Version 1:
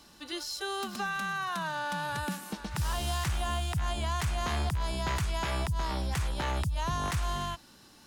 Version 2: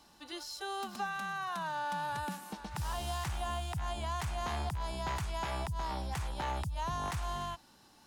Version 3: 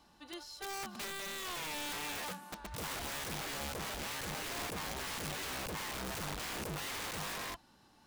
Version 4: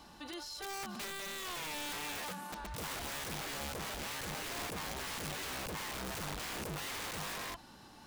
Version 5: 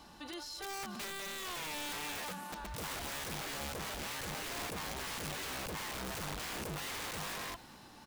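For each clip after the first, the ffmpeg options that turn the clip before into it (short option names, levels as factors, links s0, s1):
-af "equalizer=f=830:t=o:w=0.64:g=7,volume=0.473"
-af "bass=f=250:g=2,treble=f=4000:g=-5,aeval=exprs='(mod(47.3*val(0)+1,2)-1)/47.3':c=same,volume=0.75"
-af "alimiter=level_in=11.9:limit=0.0631:level=0:latency=1:release=34,volume=0.0841,volume=2.82"
-af "aecho=1:1:241|482|723|964|1205:0.0891|0.0526|0.031|0.0183|0.0108"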